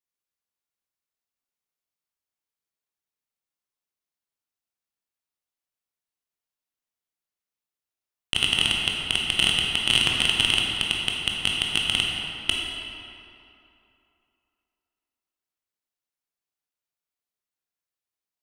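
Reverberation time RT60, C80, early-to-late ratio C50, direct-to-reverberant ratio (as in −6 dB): 2.8 s, 1.0 dB, −0.5 dB, −2.0 dB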